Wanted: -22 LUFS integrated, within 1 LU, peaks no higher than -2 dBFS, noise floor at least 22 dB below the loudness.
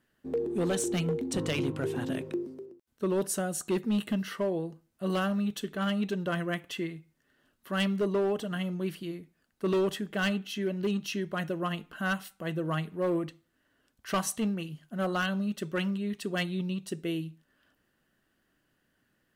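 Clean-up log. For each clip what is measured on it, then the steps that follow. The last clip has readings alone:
clipped samples 1.3%; clipping level -23.0 dBFS; loudness -32.0 LUFS; peak level -23.0 dBFS; loudness target -22.0 LUFS
-> clip repair -23 dBFS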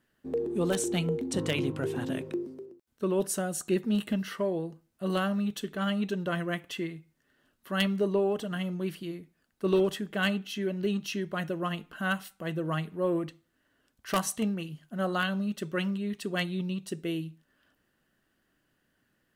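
clipped samples 0.0%; loudness -31.5 LUFS; peak level -14.0 dBFS; loudness target -22.0 LUFS
-> trim +9.5 dB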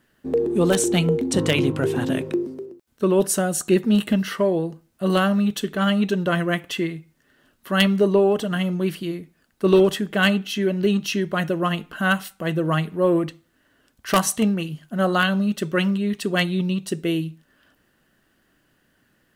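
loudness -22.0 LUFS; peak level -4.5 dBFS; noise floor -65 dBFS

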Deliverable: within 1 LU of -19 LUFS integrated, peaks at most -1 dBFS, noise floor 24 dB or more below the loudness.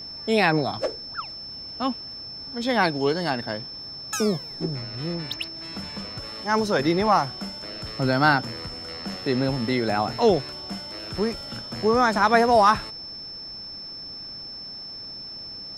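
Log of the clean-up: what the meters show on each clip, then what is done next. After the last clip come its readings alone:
steady tone 5.3 kHz; tone level -35 dBFS; loudness -25.0 LUFS; peak level -4.0 dBFS; loudness target -19.0 LUFS
-> band-stop 5.3 kHz, Q 30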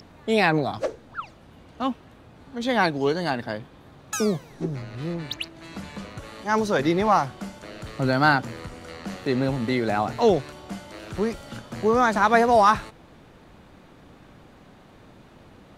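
steady tone not found; loudness -23.5 LUFS; peak level -4.0 dBFS; loudness target -19.0 LUFS
-> trim +4.5 dB; peak limiter -1 dBFS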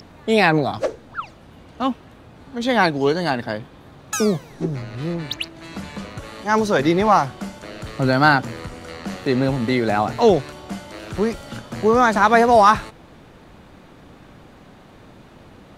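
loudness -19.0 LUFS; peak level -1.0 dBFS; noise floor -46 dBFS

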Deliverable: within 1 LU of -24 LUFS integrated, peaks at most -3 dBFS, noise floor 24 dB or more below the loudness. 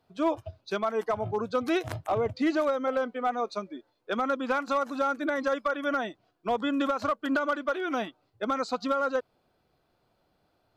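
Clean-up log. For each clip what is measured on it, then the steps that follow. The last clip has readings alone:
clipped samples 0.6%; clipping level -19.5 dBFS; loudness -29.5 LUFS; peak level -19.5 dBFS; loudness target -24.0 LUFS
-> clip repair -19.5 dBFS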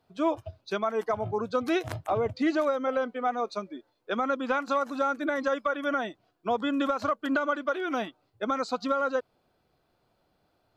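clipped samples 0.0%; loudness -29.5 LUFS; peak level -16.0 dBFS; loudness target -24.0 LUFS
-> trim +5.5 dB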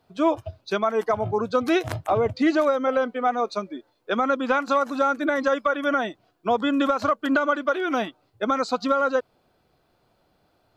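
loudness -24.0 LUFS; peak level -10.5 dBFS; noise floor -67 dBFS

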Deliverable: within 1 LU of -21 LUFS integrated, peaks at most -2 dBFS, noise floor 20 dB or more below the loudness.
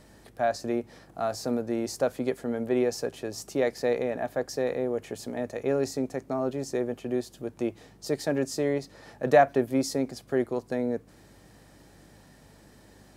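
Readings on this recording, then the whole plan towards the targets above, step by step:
hum 50 Hz; highest harmonic 200 Hz; hum level -58 dBFS; loudness -29.0 LUFS; peak level -7.5 dBFS; loudness target -21.0 LUFS
-> de-hum 50 Hz, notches 4; trim +8 dB; peak limiter -2 dBFS

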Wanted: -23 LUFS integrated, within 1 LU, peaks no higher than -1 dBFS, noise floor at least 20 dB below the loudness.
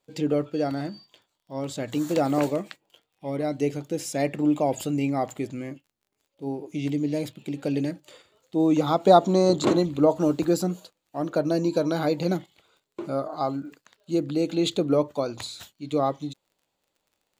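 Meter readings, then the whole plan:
tick rate 32 per s; loudness -25.5 LUFS; peak level -4.0 dBFS; loudness target -23.0 LUFS
-> de-click; trim +2.5 dB

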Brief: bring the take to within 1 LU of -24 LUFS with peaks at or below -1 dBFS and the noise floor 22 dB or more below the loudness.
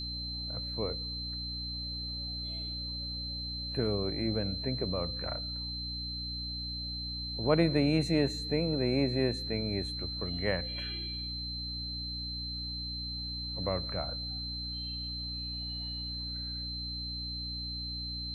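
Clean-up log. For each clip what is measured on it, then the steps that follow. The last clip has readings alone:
hum 60 Hz; highest harmonic 300 Hz; hum level -39 dBFS; steady tone 4.1 kHz; tone level -37 dBFS; loudness -33.5 LUFS; peak level -11.0 dBFS; loudness target -24.0 LUFS
-> hum notches 60/120/180/240/300 Hz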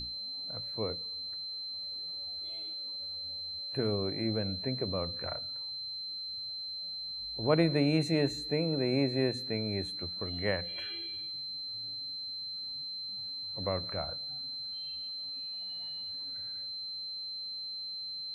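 hum not found; steady tone 4.1 kHz; tone level -37 dBFS
-> band-stop 4.1 kHz, Q 30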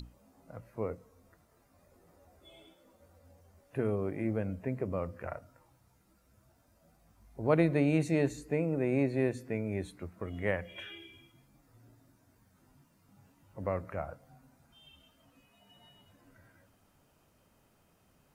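steady tone not found; loudness -33.5 LUFS; peak level -12.0 dBFS; loudness target -24.0 LUFS
-> trim +9.5 dB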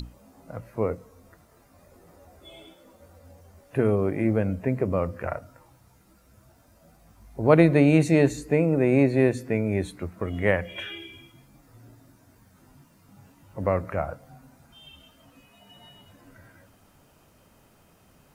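loudness -24.0 LUFS; peak level -2.5 dBFS; noise floor -59 dBFS

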